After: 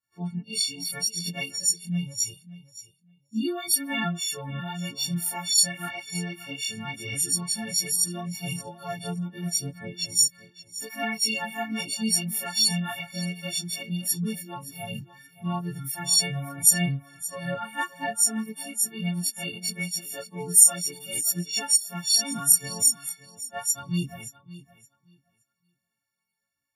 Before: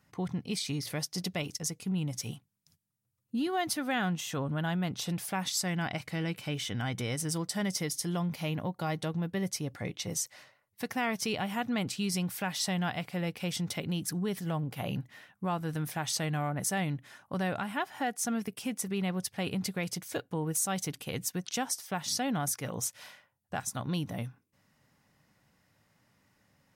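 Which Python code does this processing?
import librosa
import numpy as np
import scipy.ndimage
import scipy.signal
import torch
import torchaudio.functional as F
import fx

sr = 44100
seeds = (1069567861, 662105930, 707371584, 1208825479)

y = fx.freq_snap(x, sr, grid_st=4)
y = fx.spec_gate(y, sr, threshold_db=-30, keep='strong')
y = fx.chorus_voices(y, sr, voices=2, hz=0.77, base_ms=25, depth_ms=2.5, mix_pct=60)
y = fx.echo_feedback(y, sr, ms=571, feedback_pct=30, wet_db=-11.0)
y = fx.spectral_expand(y, sr, expansion=1.5)
y = F.gain(torch.from_numpy(y), 6.5).numpy()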